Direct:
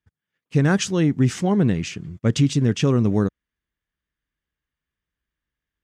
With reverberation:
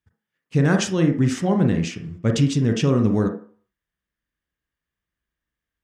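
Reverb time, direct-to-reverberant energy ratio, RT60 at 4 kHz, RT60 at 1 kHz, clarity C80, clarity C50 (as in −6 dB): 0.45 s, 4.0 dB, 0.45 s, 0.45 s, 14.0 dB, 8.5 dB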